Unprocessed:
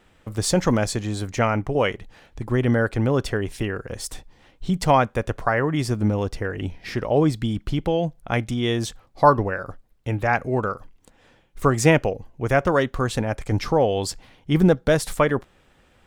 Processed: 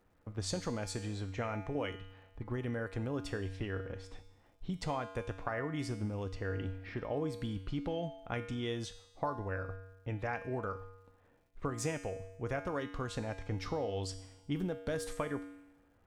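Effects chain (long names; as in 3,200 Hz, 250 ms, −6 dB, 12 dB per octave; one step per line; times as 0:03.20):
low-pass that shuts in the quiet parts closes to 1,400 Hz, open at −17 dBFS
downward compressor, threshold −21 dBFS, peak gain reduction 12 dB
tuned comb filter 95 Hz, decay 0.97 s, harmonics odd, mix 80%
surface crackle 400 per second −70 dBFS
level +1 dB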